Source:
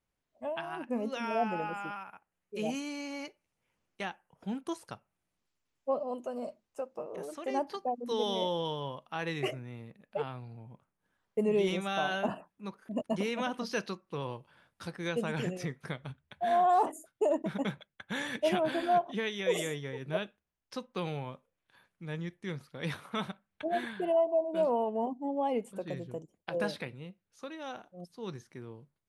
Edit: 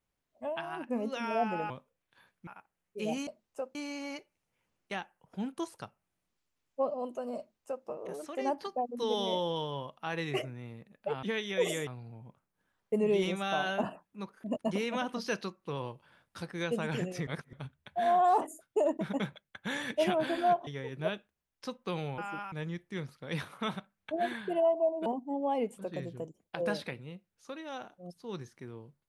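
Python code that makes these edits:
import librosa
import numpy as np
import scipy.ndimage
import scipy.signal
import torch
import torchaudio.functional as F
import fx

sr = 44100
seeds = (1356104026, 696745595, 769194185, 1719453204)

y = fx.edit(x, sr, fx.swap(start_s=1.7, length_s=0.34, other_s=21.27, other_length_s=0.77),
    fx.duplicate(start_s=6.47, length_s=0.48, to_s=2.84),
    fx.reverse_span(start_s=15.72, length_s=0.26),
    fx.move(start_s=19.12, length_s=0.64, to_s=10.32),
    fx.cut(start_s=24.58, length_s=0.42), tone=tone)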